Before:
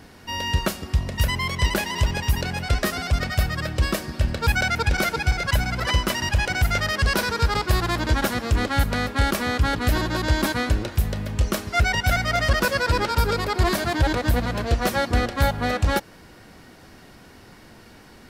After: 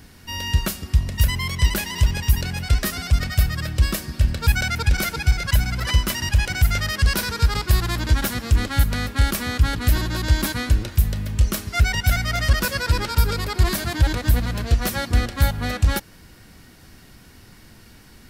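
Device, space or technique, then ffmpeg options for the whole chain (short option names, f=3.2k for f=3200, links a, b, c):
smiley-face EQ: -af "lowshelf=f=110:g=6,equalizer=f=620:t=o:w=2.2:g=-7,highshelf=f=8.8k:g=8"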